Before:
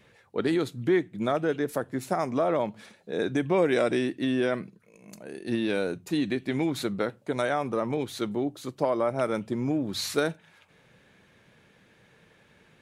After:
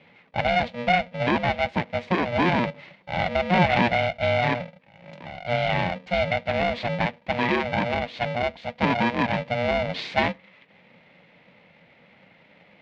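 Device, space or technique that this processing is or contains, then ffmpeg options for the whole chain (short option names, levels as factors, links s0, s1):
ring modulator pedal into a guitar cabinet: -af "aeval=exprs='val(0)*sgn(sin(2*PI*360*n/s))':c=same,highpass=76,equalizer=f=78:t=q:w=4:g=-8,equalizer=f=180:t=q:w=4:g=7,equalizer=f=340:t=q:w=4:g=5,equalizer=f=610:t=q:w=4:g=4,equalizer=f=1300:t=q:w=4:g=-7,equalizer=f=2200:t=q:w=4:g=8,lowpass=f=3800:w=0.5412,lowpass=f=3800:w=1.3066,volume=1.33"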